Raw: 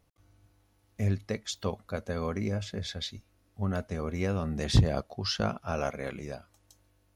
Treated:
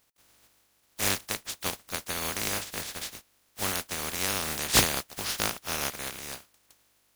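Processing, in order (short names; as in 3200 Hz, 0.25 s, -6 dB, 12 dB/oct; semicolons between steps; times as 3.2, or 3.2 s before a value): spectral contrast lowered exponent 0.18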